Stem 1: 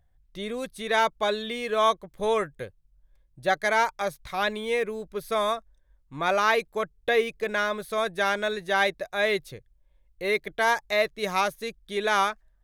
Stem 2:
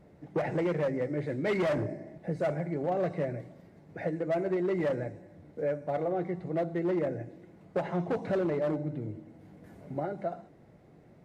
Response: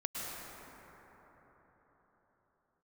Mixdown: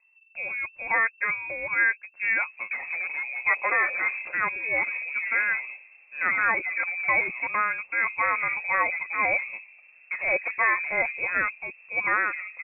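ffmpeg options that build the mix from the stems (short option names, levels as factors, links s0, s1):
-filter_complex "[0:a]aecho=1:1:5.6:0.31,alimiter=limit=0.224:level=0:latency=1:release=481,volume=1.06[s0];[1:a]adelay=2350,volume=0.75[s1];[s0][s1]amix=inputs=2:normalize=0,lowpass=f=2300:t=q:w=0.5098,lowpass=f=2300:t=q:w=0.6013,lowpass=f=2300:t=q:w=0.9,lowpass=f=2300:t=q:w=2.563,afreqshift=-2700"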